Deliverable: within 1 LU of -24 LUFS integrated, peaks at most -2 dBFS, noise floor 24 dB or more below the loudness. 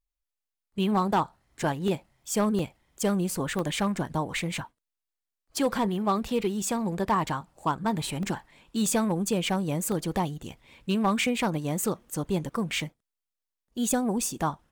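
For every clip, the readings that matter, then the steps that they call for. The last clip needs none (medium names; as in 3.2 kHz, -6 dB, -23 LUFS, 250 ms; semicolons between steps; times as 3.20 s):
clipped samples 0.3%; clipping level -17.0 dBFS; dropouts 6; longest dropout 1.5 ms; loudness -28.5 LUFS; peak level -17.0 dBFS; loudness target -24.0 LUFS
-> clip repair -17 dBFS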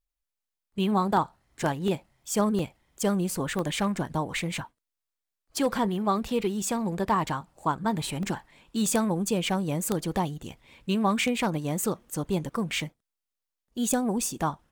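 clipped samples 0.0%; dropouts 6; longest dropout 1.5 ms
-> interpolate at 1.88/2.59/3.59/8.23/8.86/9.92 s, 1.5 ms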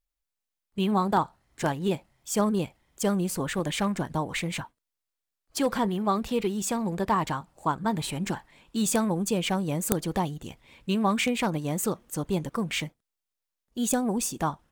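dropouts 0; loudness -28.5 LUFS; peak level -3.5 dBFS; loudness target -24.0 LUFS
-> trim +4.5 dB; peak limiter -2 dBFS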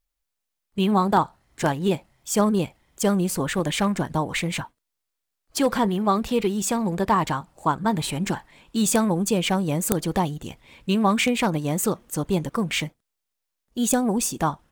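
loudness -24.0 LUFS; peak level -2.0 dBFS; noise floor -82 dBFS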